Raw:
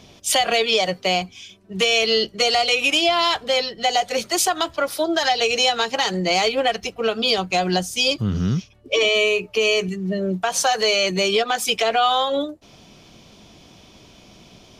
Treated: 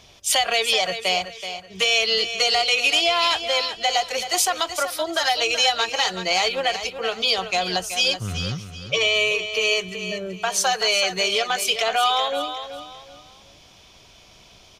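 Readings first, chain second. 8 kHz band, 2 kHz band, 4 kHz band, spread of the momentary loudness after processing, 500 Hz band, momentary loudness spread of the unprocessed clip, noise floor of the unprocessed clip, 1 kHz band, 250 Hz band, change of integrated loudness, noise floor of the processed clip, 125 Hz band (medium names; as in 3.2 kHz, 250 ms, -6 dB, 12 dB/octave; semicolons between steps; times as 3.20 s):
+0.5 dB, 0.0 dB, +0.5 dB, 10 LU, -4.5 dB, 7 LU, -49 dBFS, -2.0 dB, -10.0 dB, -1.0 dB, -50 dBFS, -7.0 dB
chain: peaking EQ 230 Hz -12.5 dB 1.9 oct; feedback delay 378 ms, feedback 31%, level -10 dB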